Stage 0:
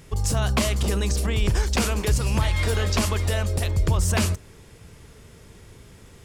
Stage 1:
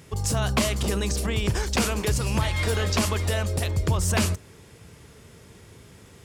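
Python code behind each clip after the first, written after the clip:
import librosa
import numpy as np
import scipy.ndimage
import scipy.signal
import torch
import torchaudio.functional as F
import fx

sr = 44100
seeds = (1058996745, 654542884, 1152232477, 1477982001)

y = scipy.signal.sosfilt(scipy.signal.butter(2, 75.0, 'highpass', fs=sr, output='sos'), x)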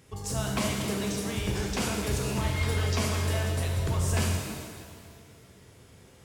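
y = fx.rev_shimmer(x, sr, seeds[0], rt60_s=1.8, semitones=7, shimmer_db=-8, drr_db=-0.5)
y = F.gain(torch.from_numpy(y), -8.5).numpy()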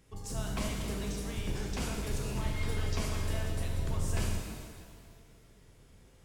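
y = fx.octave_divider(x, sr, octaves=2, level_db=3.0)
y = F.gain(torch.from_numpy(y), -8.0).numpy()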